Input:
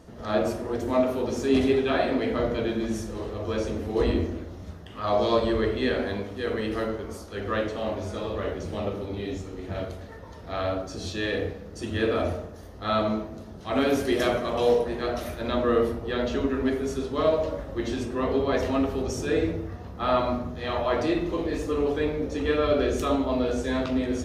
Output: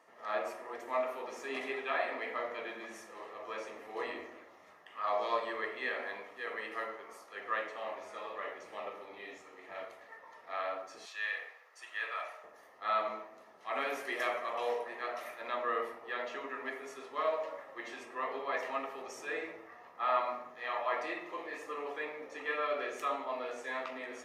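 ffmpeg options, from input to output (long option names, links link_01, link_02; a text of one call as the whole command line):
ffmpeg -i in.wav -filter_complex "[0:a]asettb=1/sr,asplit=3[link_01][link_02][link_03];[link_01]atrim=end=11.054[link_04];[link_02]atrim=start=11.05:end=12.44,asetpts=PTS-STARTPTS,afade=type=in:duration=0.004:curve=qsin,afade=type=out:start_time=1.386:duration=0.004:curve=qsin,highpass=940[link_05];[link_03]atrim=start=12.436[link_06];[link_04][link_05]acrossfade=duration=0.004:curve1=hsin:curve2=qsin[link_07];[link_07][link_06]acrossfade=duration=0.004:curve1=qsin:curve2=hsin,highpass=1000,highshelf=frequency=2700:width_type=q:width=1.5:gain=-9.5,bandreject=frequency=1500:width=5,volume=-2dB" out.wav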